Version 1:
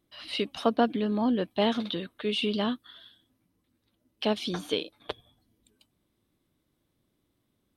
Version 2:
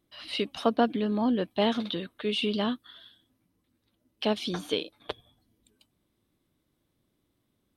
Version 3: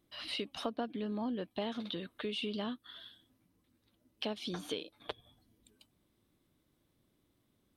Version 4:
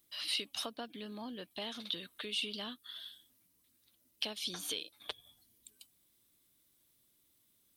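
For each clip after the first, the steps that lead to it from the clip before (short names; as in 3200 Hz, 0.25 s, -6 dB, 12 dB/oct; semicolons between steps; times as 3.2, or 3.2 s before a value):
nothing audible
compressor 3:1, threshold -38 dBFS, peak gain reduction 15 dB
pre-emphasis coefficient 0.9; gain +11 dB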